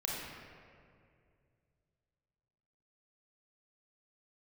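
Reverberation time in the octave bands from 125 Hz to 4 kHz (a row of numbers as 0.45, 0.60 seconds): 3.4, 2.6, 2.6, 2.0, 2.0, 1.3 seconds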